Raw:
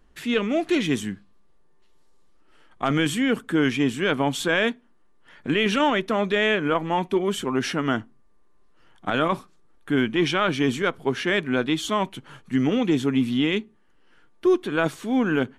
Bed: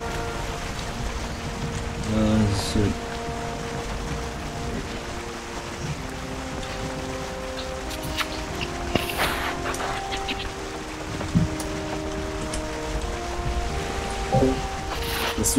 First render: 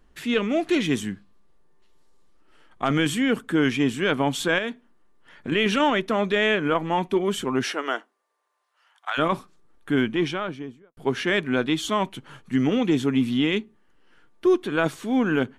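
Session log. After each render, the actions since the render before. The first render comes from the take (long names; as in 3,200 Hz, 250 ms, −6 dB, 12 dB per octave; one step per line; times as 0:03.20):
0:04.58–0:05.52: downward compressor, threshold −24 dBFS
0:07.63–0:09.17: high-pass filter 330 Hz → 910 Hz 24 dB per octave
0:09.92–0:10.97: fade out and dull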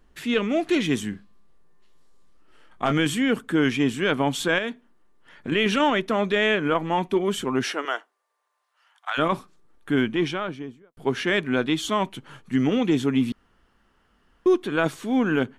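0:01.10–0:02.92: double-tracking delay 24 ms −6.5 dB
0:07.85–0:09.15: high-pass filter 480 Hz
0:13.32–0:14.46: fill with room tone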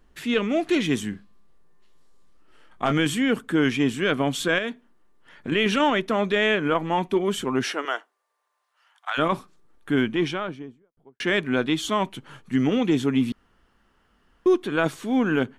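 0:04.01–0:04.65: notch filter 880 Hz, Q 6.1
0:10.33–0:11.20: fade out and dull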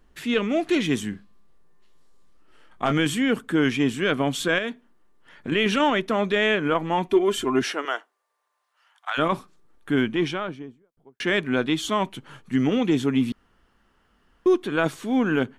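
0:07.09–0:07.62: comb filter 2.9 ms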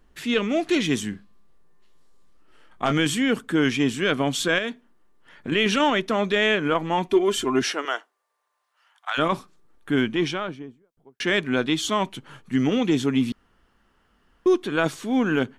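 dynamic equaliser 5,500 Hz, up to +5 dB, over −45 dBFS, Q 0.9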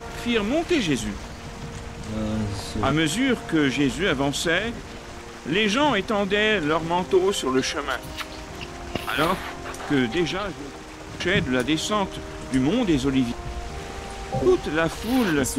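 mix in bed −6 dB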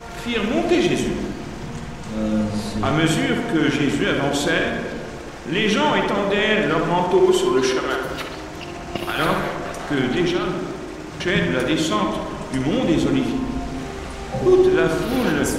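tape delay 67 ms, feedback 83%, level −3 dB, low-pass 1,900 Hz
rectangular room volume 2,300 cubic metres, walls mixed, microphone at 0.91 metres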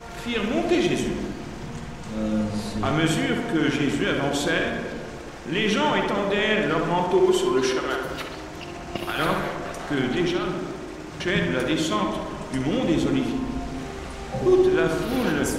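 level −3.5 dB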